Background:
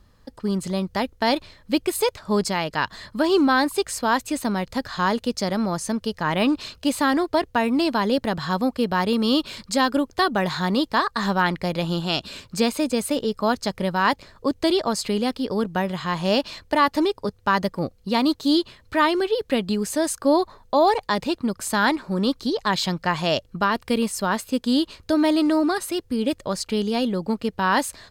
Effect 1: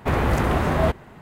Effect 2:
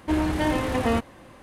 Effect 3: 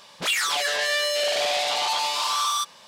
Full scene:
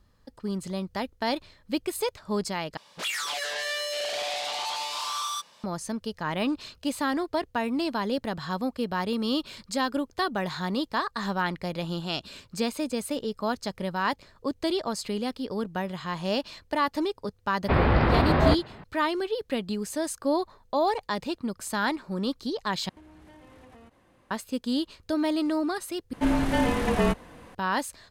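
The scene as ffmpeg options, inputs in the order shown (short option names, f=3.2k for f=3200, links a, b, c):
-filter_complex "[2:a]asplit=2[a][b];[0:a]volume=-7dB[c];[1:a]aresample=11025,aresample=44100[d];[a]acompressor=threshold=-37dB:ratio=8:attack=11:release=78:knee=1:detection=peak[e];[b]afreqshift=-39[f];[c]asplit=4[g][h][i][j];[g]atrim=end=2.774[k];[3:a]atrim=end=2.87,asetpts=PTS-STARTPTS,volume=-7dB[l];[h]atrim=start=5.636:end=22.894[m];[e]atrim=end=1.42,asetpts=PTS-STARTPTS,volume=-14dB[n];[i]atrim=start=24.306:end=26.134[o];[f]atrim=end=1.42[p];[j]atrim=start=27.546[q];[d]atrim=end=1.21,asetpts=PTS-STARTPTS,volume=-0.5dB,afade=t=in:d=0.004:c=hsin,afade=t=out:st=1.206:d=0.004:c=hsin,adelay=17630[r];[k][l]acrossfade=d=0.004:c1=hsin:c2=hsin[s];[s][m]acrossfade=d=0.004:c1=hsin:c2=hsin[t];[t][n]acrossfade=d=0.004:c1=hsin:c2=hsin[u];[u][o]acrossfade=d=0.004:c1=hsin:c2=hsin[v];[v][p]acrossfade=d=0.004:c1=hsin:c2=hsin[w];[w][q]acrossfade=d=0.004:c1=hsin:c2=hsin[x];[x][r]amix=inputs=2:normalize=0"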